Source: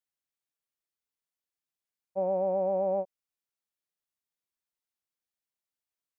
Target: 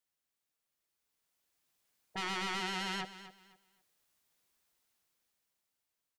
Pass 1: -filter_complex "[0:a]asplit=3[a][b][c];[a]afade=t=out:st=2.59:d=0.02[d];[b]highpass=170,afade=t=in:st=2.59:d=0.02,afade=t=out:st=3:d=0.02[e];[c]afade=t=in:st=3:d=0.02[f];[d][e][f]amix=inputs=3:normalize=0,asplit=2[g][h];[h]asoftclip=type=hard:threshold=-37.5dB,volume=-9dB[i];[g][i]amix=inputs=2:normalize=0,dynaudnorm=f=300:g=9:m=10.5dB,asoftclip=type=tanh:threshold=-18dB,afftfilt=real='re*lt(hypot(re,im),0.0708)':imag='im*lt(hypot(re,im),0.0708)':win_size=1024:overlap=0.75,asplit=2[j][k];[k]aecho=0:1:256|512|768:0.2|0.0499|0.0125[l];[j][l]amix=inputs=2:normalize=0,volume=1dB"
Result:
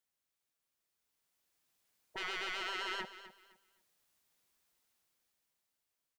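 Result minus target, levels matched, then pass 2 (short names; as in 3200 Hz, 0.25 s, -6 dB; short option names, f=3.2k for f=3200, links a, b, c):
soft clip: distortion -5 dB
-filter_complex "[0:a]asplit=3[a][b][c];[a]afade=t=out:st=2.59:d=0.02[d];[b]highpass=170,afade=t=in:st=2.59:d=0.02,afade=t=out:st=3:d=0.02[e];[c]afade=t=in:st=3:d=0.02[f];[d][e][f]amix=inputs=3:normalize=0,asplit=2[g][h];[h]asoftclip=type=hard:threshold=-37.5dB,volume=-9dB[i];[g][i]amix=inputs=2:normalize=0,dynaudnorm=f=300:g=9:m=10.5dB,asoftclip=type=tanh:threshold=-26.5dB,afftfilt=real='re*lt(hypot(re,im),0.0708)':imag='im*lt(hypot(re,im),0.0708)':win_size=1024:overlap=0.75,asplit=2[j][k];[k]aecho=0:1:256|512|768:0.2|0.0499|0.0125[l];[j][l]amix=inputs=2:normalize=0,volume=1dB"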